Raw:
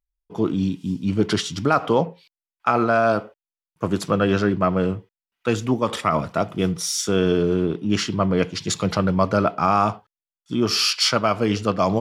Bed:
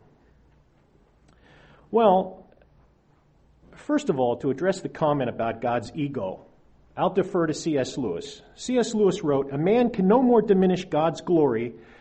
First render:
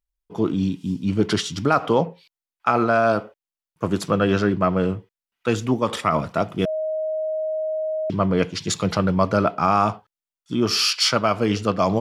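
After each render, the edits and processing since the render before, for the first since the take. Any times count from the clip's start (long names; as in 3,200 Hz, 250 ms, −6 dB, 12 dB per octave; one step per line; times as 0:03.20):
0:06.65–0:08.10: beep over 627 Hz −22 dBFS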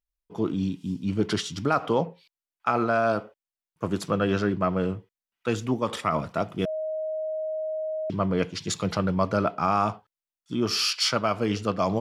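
level −5 dB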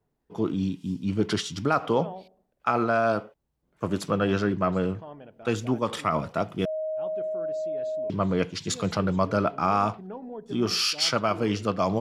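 mix in bed −20.5 dB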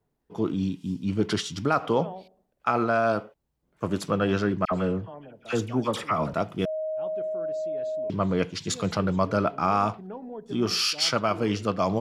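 0:04.65–0:06.34: all-pass dispersion lows, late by 64 ms, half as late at 1,500 Hz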